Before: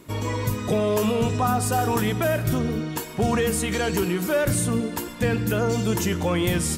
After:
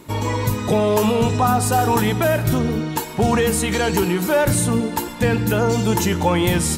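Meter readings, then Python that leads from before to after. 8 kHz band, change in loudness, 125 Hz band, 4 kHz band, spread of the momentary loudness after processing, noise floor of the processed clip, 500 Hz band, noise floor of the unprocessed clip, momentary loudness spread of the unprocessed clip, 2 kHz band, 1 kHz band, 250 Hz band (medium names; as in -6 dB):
+4.5 dB, +5.0 dB, +4.5 dB, +5.0 dB, 4 LU, -30 dBFS, +4.5 dB, -34 dBFS, 5 LU, +4.5 dB, +6.5 dB, +4.5 dB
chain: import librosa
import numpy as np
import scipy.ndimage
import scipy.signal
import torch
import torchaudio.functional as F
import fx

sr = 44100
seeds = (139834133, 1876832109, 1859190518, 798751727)

y = fx.small_body(x, sr, hz=(870.0, 4000.0), ring_ms=60, db=12)
y = F.gain(torch.from_numpy(y), 4.5).numpy()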